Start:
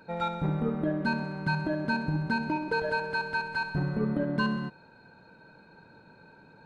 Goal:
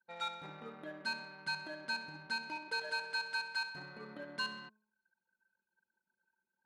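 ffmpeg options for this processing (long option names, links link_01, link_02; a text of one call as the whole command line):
ffmpeg -i in.wav -af "anlmdn=0.158,aderivative,bandreject=frequency=213.1:width_type=h:width=4,bandreject=frequency=426.2:width_type=h:width=4,bandreject=frequency=639.3:width_type=h:width=4,bandreject=frequency=852.4:width_type=h:width=4,bandreject=frequency=1065.5:width_type=h:width=4,volume=6.5dB" out.wav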